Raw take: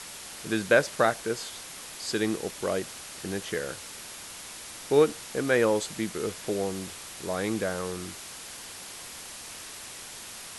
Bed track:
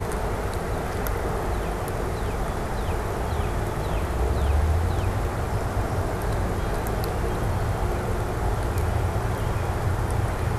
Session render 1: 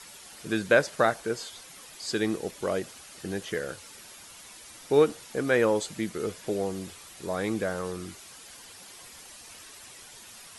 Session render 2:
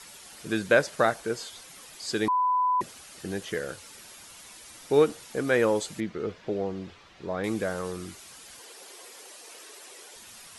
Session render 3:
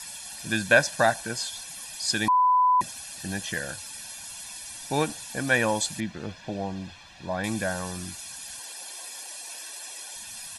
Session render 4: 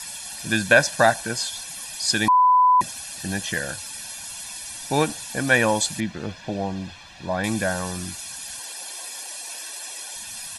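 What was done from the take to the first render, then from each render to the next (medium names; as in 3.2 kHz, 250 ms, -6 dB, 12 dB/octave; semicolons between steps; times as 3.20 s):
noise reduction 9 dB, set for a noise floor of -43 dBFS
2.28–2.81 s: bleep 1 kHz -21 dBFS; 6.00–7.44 s: distance through air 210 m; 8.59–10.16 s: resonant high-pass 410 Hz, resonance Q 2.7
treble shelf 3.1 kHz +8 dB; comb 1.2 ms, depth 76%
trim +4.5 dB; peak limiter -3 dBFS, peak gain reduction 2 dB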